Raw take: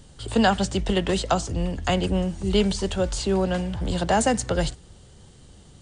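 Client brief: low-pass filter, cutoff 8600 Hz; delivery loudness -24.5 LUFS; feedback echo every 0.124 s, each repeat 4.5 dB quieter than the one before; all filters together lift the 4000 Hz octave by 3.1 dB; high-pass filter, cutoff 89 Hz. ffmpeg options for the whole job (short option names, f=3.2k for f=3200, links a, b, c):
-af "highpass=89,lowpass=8.6k,equalizer=f=4k:t=o:g=4.5,aecho=1:1:124|248|372|496|620|744|868|992|1116:0.596|0.357|0.214|0.129|0.0772|0.0463|0.0278|0.0167|0.01,volume=-2dB"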